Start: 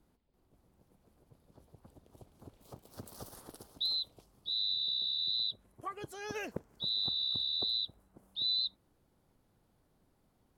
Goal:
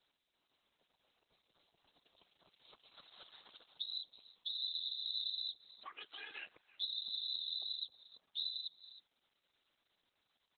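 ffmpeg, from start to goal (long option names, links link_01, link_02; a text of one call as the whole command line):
ffmpeg -i in.wav -filter_complex "[0:a]asplit=2[link_01][link_02];[link_02]adelay=320,highpass=300,lowpass=3400,asoftclip=type=hard:threshold=-30.5dB,volume=-28dB[link_03];[link_01][link_03]amix=inputs=2:normalize=0,acompressor=threshold=-37dB:ratio=12,crystalizer=i=3:c=0,acrossover=split=1000|6800[link_04][link_05][link_06];[link_04]acompressor=threshold=-51dB:ratio=4[link_07];[link_05]acompressor=threshold=-45dB:ratio=4[link_08];[link_06]acompressor=threshold=-59dB:ratio=4[link_09];[link_07][link_08][link_09]amix=inputs=3:normalize=0,aderivative,afftfilt=real='hypot(re,im)*cos(2*PI*random(0))':imag='hypot(re,im)*sin(2*PI*random(1))':win_size=512:overlap=0.75,volume=18dB" -ar 48000 -c:a libopus -b:a 8k out.opus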